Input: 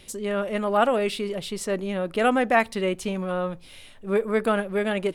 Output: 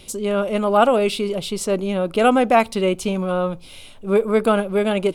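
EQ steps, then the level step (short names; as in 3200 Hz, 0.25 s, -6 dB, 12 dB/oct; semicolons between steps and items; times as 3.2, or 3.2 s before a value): bell 1800 Hz -14 dB 0.27 oct; +6.0 dB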